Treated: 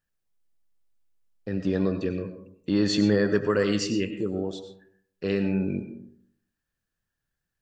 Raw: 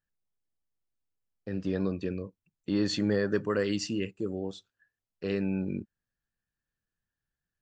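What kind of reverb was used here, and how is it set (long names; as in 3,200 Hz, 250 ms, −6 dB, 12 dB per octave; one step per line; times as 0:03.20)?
comb and all-pass reverb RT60 0.66 s, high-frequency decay 0.4×, pre-delay 60 ms, DRR 8.5 dB
level +4.5 dB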